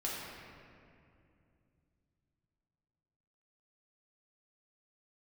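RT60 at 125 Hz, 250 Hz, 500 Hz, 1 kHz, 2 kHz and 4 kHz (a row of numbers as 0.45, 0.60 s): 4.3, 3.6, 2.8, 2.3, 2.1, 1.5 s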